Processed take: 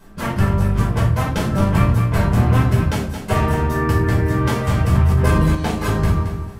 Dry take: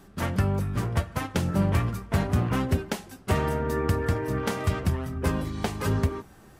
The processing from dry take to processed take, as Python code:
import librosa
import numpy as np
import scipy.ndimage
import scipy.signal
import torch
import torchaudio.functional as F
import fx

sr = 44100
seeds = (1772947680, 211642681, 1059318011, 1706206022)

p1 = fx.quant_dither(x, sr, seeds[0], bits=12, dither='triangular', at=(3.79, 4.29))
p2 = p1 + fx.echo_feedback(p1, sr, ms=222, feedback_pct=25, wet_db=-8.5, dry=0)
p3 = fx.room_shoebox(p2, sr, seeds[1], volume_m3=370.0, walls='furnished', distance_m=5.1)
p4 = fx.env_flatten(p3, sr, amount_pct=70, at=(4.92, 5.55))
y = p4 * librosa.db_to_amplitude(-1.5)